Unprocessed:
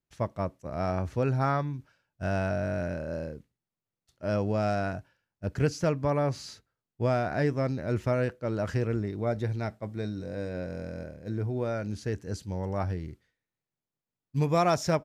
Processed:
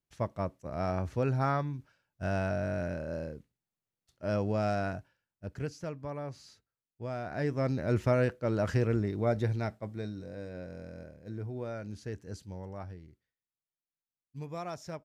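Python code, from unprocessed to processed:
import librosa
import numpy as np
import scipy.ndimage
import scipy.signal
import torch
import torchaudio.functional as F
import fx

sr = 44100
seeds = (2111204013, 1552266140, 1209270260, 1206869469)

y = fx.gain(x, sr, db=fx.line((4.92, -2.5), (5.8, -12.0), (7.06, -12.0), (7.76, 0.5), (9.45, 0.5), (10.4, -7.5), (12.42, -7.5), (13.09, -15.0)))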